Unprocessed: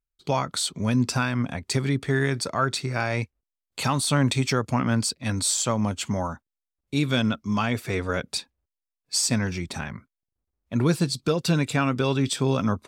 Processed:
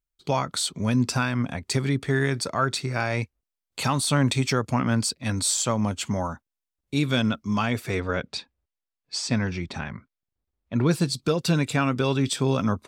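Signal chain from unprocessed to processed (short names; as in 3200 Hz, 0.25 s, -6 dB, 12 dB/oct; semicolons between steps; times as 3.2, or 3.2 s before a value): 8–10.91 LPF 4500 Hz 12 dB/oct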